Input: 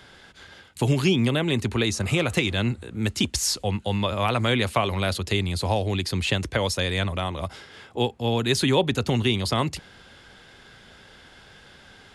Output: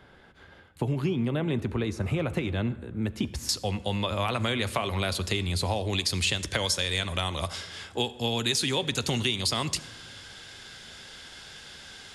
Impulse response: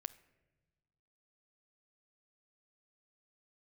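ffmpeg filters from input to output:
-filter_complex "[0:a]asetnsamples=nb_out_samples=441:pad=0,asendcmd='3.49 equalizer g 3.5;5.93 equalizer g 12.5',equalizer=frequency=6900:width=0.38:gain=-14.5,acompressor=threshold=-22dB:ratio=6[link_01];[1:a]atrim=start_sample=2205,asetrate=29988,aresample=44100[link_02];[link_01][link_02]afir=irnorm=-1:irlink=0"

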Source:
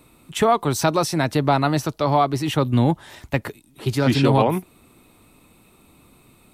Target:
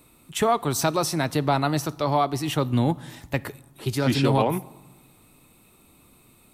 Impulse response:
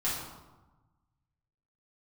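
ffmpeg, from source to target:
-filter_complex "[0:a]highshelf=frequency=6000:gain=6.5,asplit=2[link_01][link_02];[1:a]atrim=start_sample=2205,adelay=20[link_03];[link_02][link_03]afir=irnorm=-1:irlink=0,volume=-26.5dB[link_04];[link_01][link_04]amix=inputs=2:normalize=0,volume=-4dB"

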